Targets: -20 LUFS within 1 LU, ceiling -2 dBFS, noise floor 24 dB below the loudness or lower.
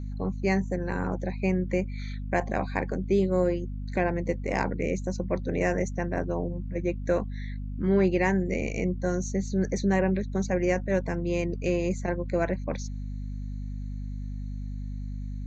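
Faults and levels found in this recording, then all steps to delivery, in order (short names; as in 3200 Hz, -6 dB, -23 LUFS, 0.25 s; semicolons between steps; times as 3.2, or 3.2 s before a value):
hum 50 Hz; harmonics up to 250 Hz; hum level -31 dBFS; loudness -29.0 LUFS; peak -11.5 dBFS; loudness target -20.0 LUFS
-> notches 50/100/150/200/250 Hz; gain +9 dB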